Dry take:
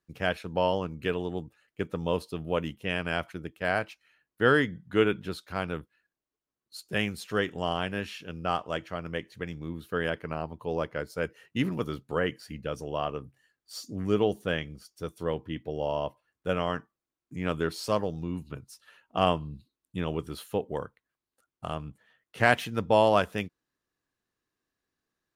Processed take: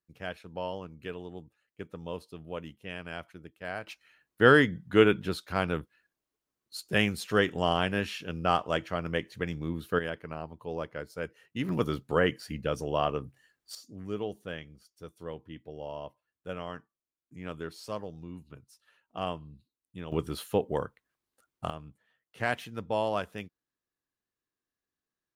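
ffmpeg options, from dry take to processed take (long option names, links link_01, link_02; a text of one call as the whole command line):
ffmpeg -i in.wav -af "asetnsamples=nb_out_samples=441:pad=0,asendcmd='3.87 volume volume 3dB;9.99 volume volume -5dB;11.69 volume volume 3dB;13.75 volume volume -9.5dB;20.12 volume volume 2.5dB;21.7 volume volume -8dB',volume=-9.5dB" out.wav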